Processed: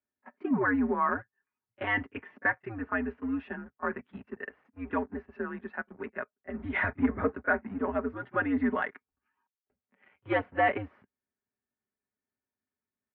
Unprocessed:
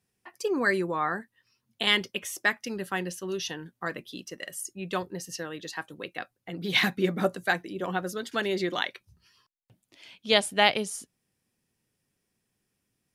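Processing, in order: comb 5.8 ms, depth 68%; sample leveller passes 2; mistuned SSB -110 Hz 270–2100 Hz; pre-echo 31 ms -23 dB; gain -8 dB

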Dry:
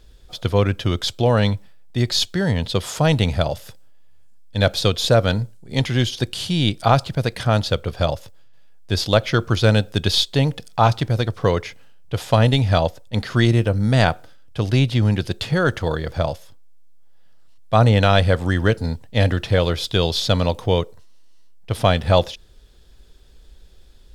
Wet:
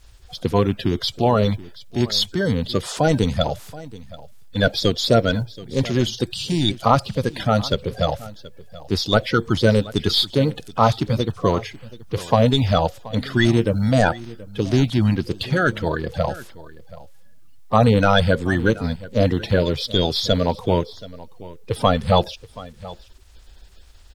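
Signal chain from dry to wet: bin magnitudes rounded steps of 30 dB; echo 0.728 s -19 dB; requantised 12-bit, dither triangular

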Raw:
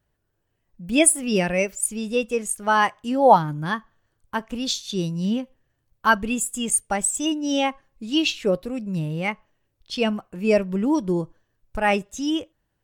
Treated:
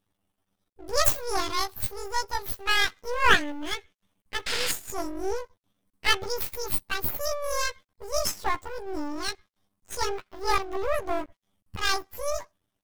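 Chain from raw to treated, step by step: delay-line pitch shifter +11.5 st; painted sound noise, 4.46–4.72, 1300–5300 Hz -25 dBFS; half-wave rectifier

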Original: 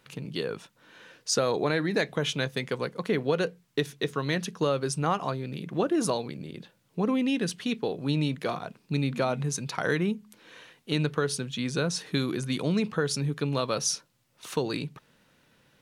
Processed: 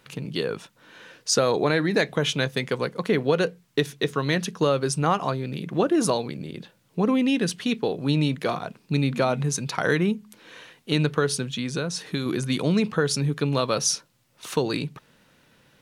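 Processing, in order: 11.47–12.26 compressor 2:1, threshold -32 dBFS, peak gain reduction 6 dB; gain +4.5 dB

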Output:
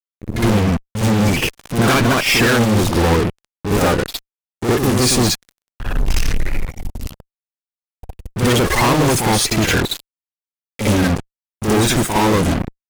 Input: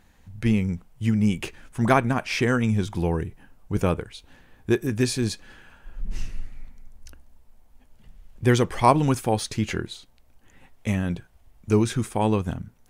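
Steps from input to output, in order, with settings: bin magnitudes rounded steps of 30 dB; fuzz box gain 41 dB, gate -38 dBFS; reverse echo 61 ms -5.5 dB

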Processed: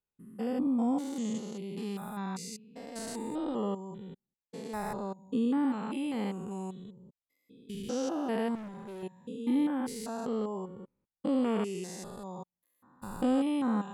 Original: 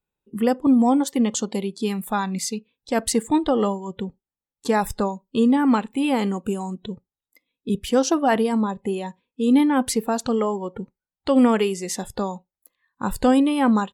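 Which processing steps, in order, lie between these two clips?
stepped spectrum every 0.2 s; 8.55–9.03 hard clip -31.5 dBFS, distortion -20 dB; gain -9 dB

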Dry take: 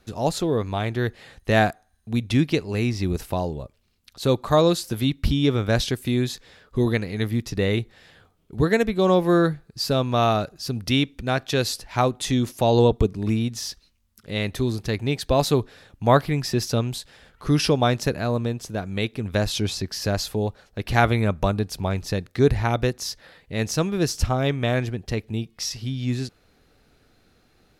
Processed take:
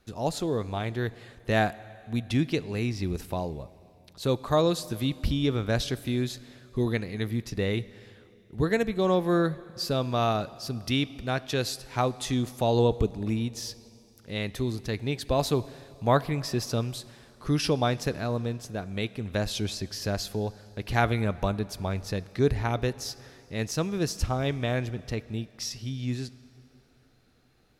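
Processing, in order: plate-style reverb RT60 2.9 s, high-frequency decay 0.9×, DRR 17.5 dB; gain -5.5 dB

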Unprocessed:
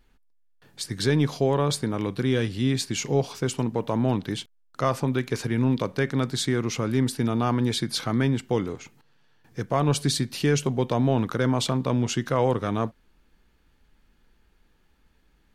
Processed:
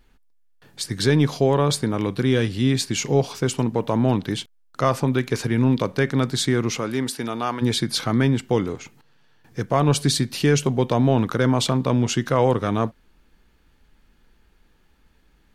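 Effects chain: 6.77–7.61 HPF 310 Hz -> 860 Hz 6 dB/oct; gain +4 dB

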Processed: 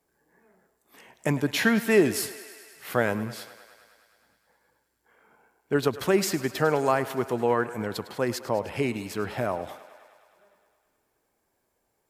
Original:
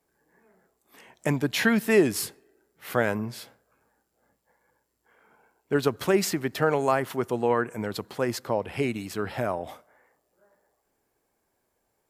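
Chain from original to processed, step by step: thinning echo 0.104 s, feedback 77%, high-pass 310 Hz, level -15.5 dB

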